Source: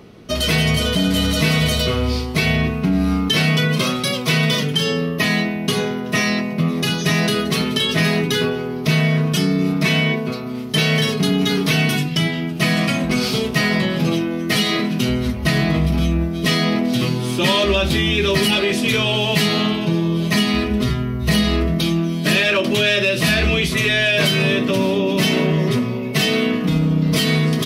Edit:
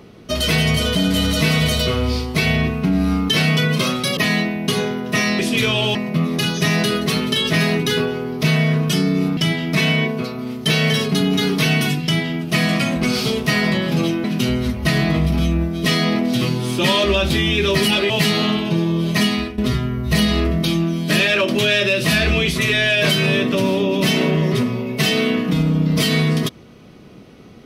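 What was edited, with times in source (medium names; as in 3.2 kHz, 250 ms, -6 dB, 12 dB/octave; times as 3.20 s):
4.17–5.17 s: delete
12.12–12.48 s: copy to 9.81 s
14.32–14.84 s: delete
18.70–19.26 s: move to 6.39 s
20.44–20.74 s: fade out, to -15 dB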